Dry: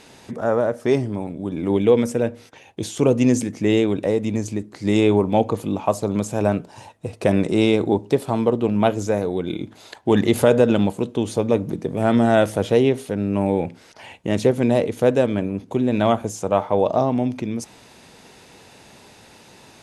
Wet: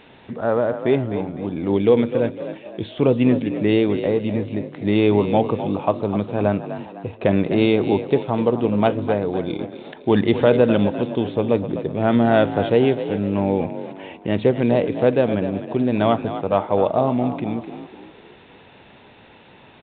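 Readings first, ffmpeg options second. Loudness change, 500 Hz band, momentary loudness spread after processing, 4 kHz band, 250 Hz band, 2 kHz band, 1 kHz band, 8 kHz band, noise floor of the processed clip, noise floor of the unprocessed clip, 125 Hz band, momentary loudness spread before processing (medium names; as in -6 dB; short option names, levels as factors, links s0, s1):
+0.5 dB, +0.5 dB, 11 LU, -1.0 dB, +0.5 dB, +0.5 dB, +0.5 dB, under -40 dB, -48 dBFS, -49 dBFS, 0.0 dB, 11 LU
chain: -filter_complex "[0:a]asplit=5[s0][s1][s2][s3][s4];[s1]adelay=253,afreqshift=42,volume=0.282[s5];[s2]adelay=506,afreqshift=84,volume=0.119[s6];[s3]adelay=759,afreqshift=126,volume=0.0495[s7];[s4]adelay=1012,afreqshift=168,volume=0.0209[s8];[s0][s5][s6][s7][s8]amix=inputs=5:normalize=0" -ar 8000 -c:a pcm_mulaw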